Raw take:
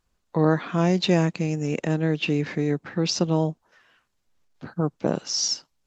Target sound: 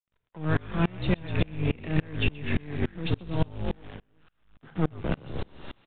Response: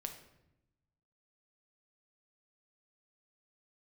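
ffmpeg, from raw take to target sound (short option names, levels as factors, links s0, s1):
-filter_complex "[0:a]asplit=7[s0][s1][s2][s3][s4][s5][s6];[s1]adelay=123,afreqshift=-53,volume=0.596[s7];[s2]adelay=246,afreqshift=-106,volume=0.275[s8];[s3]adelay=369,afreqshift=-159,volume=0.126[s9];[s4]adelay=492,afreqshift=-212,volume=0.0582[s10];[s5]adelay=615,afreqshift=-265,volume=0.0266[s11];[s6]adelay=738,afreqshift=-318,volume=0.0123[s12];[s0][s7][s8][s9][s10][s11][s12]amix=inputs=7:normalize=0,acrossover=split=150|1500[s13][s14][s15];[s13]acompressor=threshold=0.0447:ratio=4[s16];[s14]acompressor=threshold=0.0224:ratio=4[s17];[s15]acompressor=threshold=0.0251:ratio=4[s18];[s16][s17][s18]amix=inputs=3:normalize=0,aeval=exprs='0.158*(cos(1*acos(clip(val(0)/0.158,-1,1)))-cos(1*PI/2))+0.0141*(cos(8*acos(clip(val(0)/0.158,-1,1)))-cos(8*PI/2))':c=same,asplit=2[s19][s20];[s20]asoftclip=type=tanh:threshold=0.0355,volume=0.708[s21];[s19][s21]amix=inputs=2:normalize=0,acrusher=bits=7:dc=4:mix=0:aa=0.000001,asplit=2[s22][s23];[1:a]atrim=start_sample=2205,afade=t=out:st=0.33:d=0.01,atrim=end_sample=14994[s24];[s23][s24]afir=irnorm=-1:irlink=0,volume=1[s25];[s22][s25]amix=inputs=2:normalize=0,aresample=8000,aresample=44100,aeval=exprs='val(0)*pow(10,-31*if(lt(mod(-3.5*n/s,1),2*abs(-3.5)/1000),1-mod(-3.5*n/s,1)/(2*abs(-3.5)/1000),(mod(-3.5*n/s,1)-2*abs(-3.5)/1000)/(1-2*abs(-3.5)/1000))/20)':c=same"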